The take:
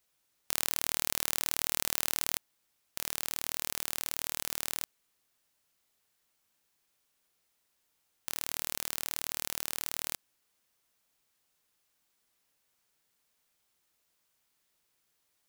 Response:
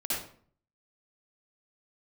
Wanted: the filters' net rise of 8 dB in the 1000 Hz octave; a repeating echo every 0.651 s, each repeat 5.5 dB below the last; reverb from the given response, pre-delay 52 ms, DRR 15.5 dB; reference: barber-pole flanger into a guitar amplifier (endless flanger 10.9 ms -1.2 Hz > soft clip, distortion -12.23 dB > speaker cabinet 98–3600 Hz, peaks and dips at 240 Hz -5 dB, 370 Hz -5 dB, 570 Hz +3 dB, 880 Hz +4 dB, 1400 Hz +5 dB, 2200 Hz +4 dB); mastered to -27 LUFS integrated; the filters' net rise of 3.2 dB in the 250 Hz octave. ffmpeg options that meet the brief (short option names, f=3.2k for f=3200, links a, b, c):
-filter_complex "[0:a]equalizer=f=250:t=o:g=8,equalizer=f=1k:t=o:g=5.5,aecho=1:1:651|1302|1953|2604|3255|3906|4557:0.531|0.281|0.149|0.079|0.0419|0.0222|0.0118,asplit=2[a][b];[1:a]atrim=start_sample=2205,adelay=52[c];[b][c]afir=irnorm=-1:irlink=0,volume=-21.5dB[d];[a][d]amix=inputs=2:normalize=0,asplit=2[e][f];[f]adelay=10.9,afreqshift=-1.2[g];[e][g]amix=inputs=2:normalize=1,asoftclip=threshold=-14.5dB,highpass=98,equalizer=f=240:t=q:w=4:g=-5,equalizer=f=370:t=q:w=4:g=-5,equalizer=f=570:t=q:w=4:g=3,equalizer=f=880:t=q:w=4:g=4,equalizer=f=1.4k:t=q:w=4:g=5,equalizer=f=2.2k:t=q:w=4:g=4,lowpass=f=3.6k:w=0.5412,lowpass=f=3.6k:w=1.3066,volume=15.5dB"